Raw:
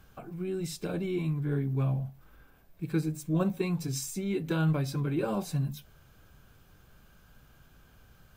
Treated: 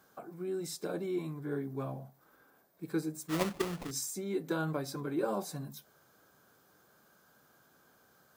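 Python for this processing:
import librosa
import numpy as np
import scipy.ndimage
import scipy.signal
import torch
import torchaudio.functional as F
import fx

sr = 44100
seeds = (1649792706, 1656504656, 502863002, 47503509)

y = scipy.signal.sosfilt(scipy.signal.butter(2, 300.0, 'highpass', fs=sr, output='sos'), x)
y = fx.peak_eq(y, sr, hz=2700.0, db=-12.0, octaves=0.67)
y = fx.sample_hold(y, sr, seeds[0], rate_hz=1600.0, jitter_pct=20, at=(3.28, 3.91))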